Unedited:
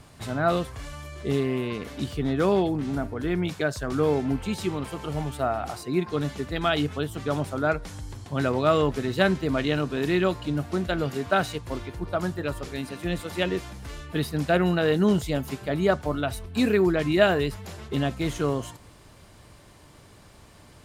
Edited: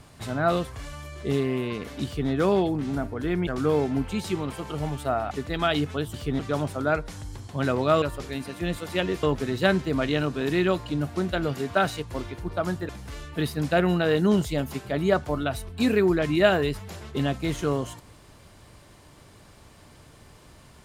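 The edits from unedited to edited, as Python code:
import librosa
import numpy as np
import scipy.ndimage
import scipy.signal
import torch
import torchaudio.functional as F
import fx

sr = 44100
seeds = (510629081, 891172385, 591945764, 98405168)

y = fx.edit(x, sr, fx.duplicate(start_s=2.05, length_s=0.25, to_s=7.16),
    fx.cut(start_s=3.47, length_s=0.34),
    fx.cut(start_s=5.65, length_s=0.68),
    fx.move(start_s=12.45, length_s=1.21, to_s=8.79), tone=tone)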